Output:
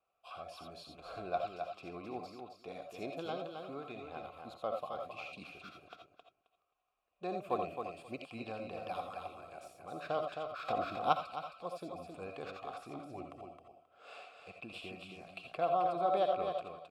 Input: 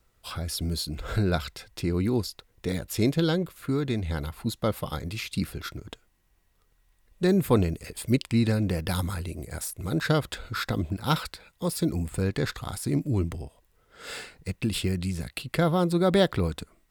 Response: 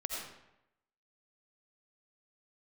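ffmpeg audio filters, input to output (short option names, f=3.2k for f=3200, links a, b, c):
-filter_complex "[0:a]aecho=1:1:266|532|798:0.501|0.0802|0.0128[a];[1:a]atrim=start_sample=2205,atrim=end_sample=3969[b];[a][b]afir=irnorm=-1:irlink=0,asettb=1/sr,asplit=3[c][d][e];[c]atrim=end=10.684[f];[d]atrim=start=10.68:end=11.13,asetpts=PTS-STARTPTS,afade=t=in:d=0.004:c=qsin,afade=t=out:st=0.446:d=0.004:c=qsin,acontrast=79[g];[e]atrim=start=11.126[h];[f][g]acrossfade=d=0.004:c1=hsin:c2=qsin[i];[i][h]acrossfade=d=0.004:c1=qsin:c2=hsin,asplit=3[j][k][l];[j]bandpass=f=730:t=q:w=8,volume=0dB[m];[k]bandpass=f=1.09k:t=q:w=8,volume=-6dB[n];[l]bandpass=f=2.44k:t=q:w=8,volume=-9dB[o];[m][n][o]amix=inputs=3:normalize=0,volume=2.5dB"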